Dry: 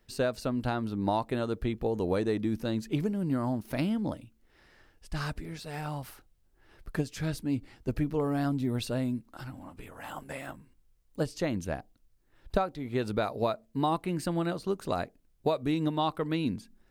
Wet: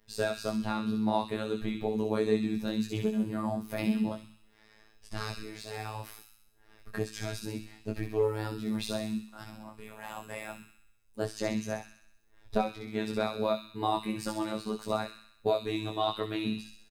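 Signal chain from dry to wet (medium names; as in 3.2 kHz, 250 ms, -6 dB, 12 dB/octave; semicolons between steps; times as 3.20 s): comb 4.9 ms, depth 52%; de-hum 57.24 Hz, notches 6; chorus 2.1 Hz, delay 18.5 ms, depth 3.4 ms; robot voice 108 Hz; on a send: feedback echo behind a high-pass 64 ms, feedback 59%, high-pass 2.5 kHz, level -3 dB; on the sum: trim +3.5 dB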